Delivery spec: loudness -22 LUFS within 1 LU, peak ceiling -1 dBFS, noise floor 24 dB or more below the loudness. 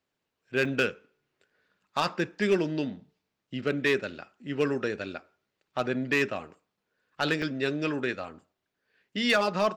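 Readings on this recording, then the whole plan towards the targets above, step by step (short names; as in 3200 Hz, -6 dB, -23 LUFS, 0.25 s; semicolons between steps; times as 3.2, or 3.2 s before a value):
clipped 0.3%; flat tops at -16.5 dBFS; dropouts 2; longest dropout 3.3 ms; loudness -29.0 LUFS; peak -16.5 dBFS; loudness target -22.0 LUFS
-> clip repair -16.5 dBFS; interpolate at 0.65/7.42, 3.3 ms; gain +7 dB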